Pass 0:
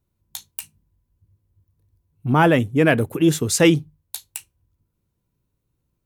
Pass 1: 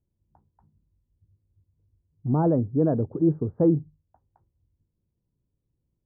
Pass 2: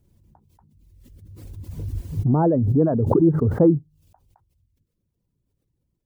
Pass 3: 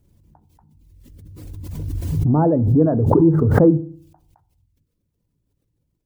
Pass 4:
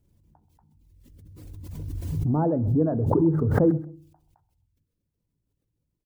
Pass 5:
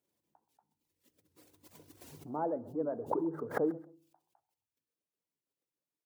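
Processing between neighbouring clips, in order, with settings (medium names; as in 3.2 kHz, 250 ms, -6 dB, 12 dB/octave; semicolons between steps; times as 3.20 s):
Gaussian low-pass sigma 11 samples; trim -3.5 dB
reverb removal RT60 0.84 s; swell ahead of each attack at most 25 dB/s; trim +4 dB
FDN reverb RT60 0.49 s, low-frequency decay 1.3×, high-frequency decay 0.25×, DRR 14.5 dB; swell ahead of each attack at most 37 dB/s; trim +1.5 dB
feedback delay 131 ms, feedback 25%, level -21 dB; trim -7 dB
high-pass 480 Hz 12 dB/octave; warped record 78 rpm, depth 160 cents; trim -5.5 dB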